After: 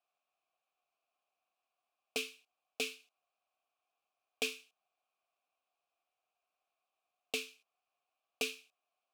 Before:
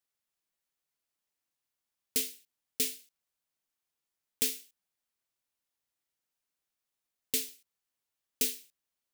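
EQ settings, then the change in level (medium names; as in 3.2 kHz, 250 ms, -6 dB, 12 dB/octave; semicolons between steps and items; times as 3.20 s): vowel filter a; +17.5 dB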